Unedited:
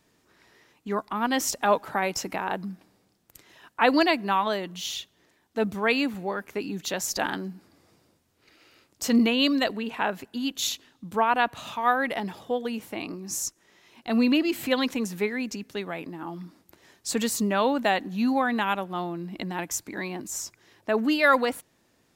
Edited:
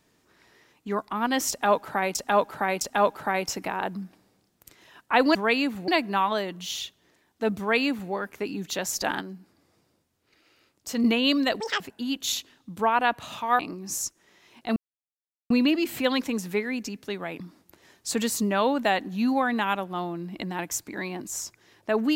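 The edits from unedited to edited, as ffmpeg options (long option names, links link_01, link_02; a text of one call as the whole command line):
ffmpeg -i in.wav -filter_complex "[0:a]asplit=12[link_01][link_02][link_03][link_04][link_05][link_06][link_07][link_08][link_09][link_10][link_11][link_12];[link_01]atrim=end=2.152[link_13];[link_02]atrim=start=1.488:end=2.152[link_14];[link_03]atrim=start=1.488:end=4.032[link_15];[link_04]atrim=start=5.738:end=6.272[link_16];[link_05]atrim=start=4.028:end=7.362[link_17];[link_06]atrim=start=7.358:end=9.192,asetpts=PTS-STARTPTS,volume=-5dB[link_18];[link_07]atrim=start=9.188:end=9.754[link_19];[link_08]atrim=start=9.75:end=10.15,asetpts=PTS-STARTPTS,asetrate=87318,aresample=44100,atrim=end_sample=8909,asetpts=PTS-STARTPTS[link_20];[link_09]atrim=start=10.146:end=11.942[link_21];[link_10]atrim=start=12.998:end=14.17,asetpts=PTS-STARTPTS,afade=type=out:start_time=1.168:duration=0.004:curve=hsin,apad=pad_dur=0.74[link_22];[link_11]atrim=start=14.17:end=16.072,asetpts=PTS-STARTPTS,afade=type=in:duration=0.004:curve=hsin[link_23];[link_12]atrim=start=16.398[link_24];[link_13][link_14]acrossfade=duration=0.004:curve1=hsin:curve2=hsin[link_25];[link_25][link_15]acrossfade=duration=0.004:curve1=hsin:curve2=hsin[link_26];[link_26][link_16]acrossfade=duration=0.004:curve1=hsin:curve2=hsin[link_27];[link_27][link_17]acrossfade=duration=0.004:curve1=hsin:curve2=hsin[link_28];[link_28][link_18]acrossfade=duration=0.004:curve1=hsin:curve2=hsin[link_29];[link_29][link_19]acrossfade=duration=0.004:curve1=hsin:curve2=hsin[link_30];[link_30][link_20]acrossfade=duration=0.004:curve1=hsin:curve2=hsin[link_31];[link_31][link_21]acrossfade=duration=0.004:curve1=hsin:curve2=hsin[link_32];[link_22][link_23]concat=n=2:v=0:a=1[link_33];[link_32][link_33]acrossfade=duration=0.004:curve1=hsin:curve2=hsin[link_34];[link_34][link_24]acrossfade=duration=0.004:curve1=hsin:curve2=hsin" out.wav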